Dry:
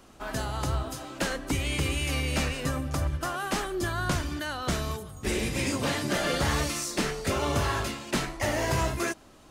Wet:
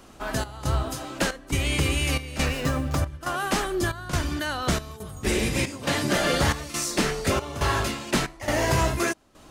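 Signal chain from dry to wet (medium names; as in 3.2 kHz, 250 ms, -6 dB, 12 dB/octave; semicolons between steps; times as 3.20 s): trance gate "xxxx..xx" 138 bpm -12 dB; 2.46–2.97 s: sliding maximum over 3 samples; trim +4.5 dB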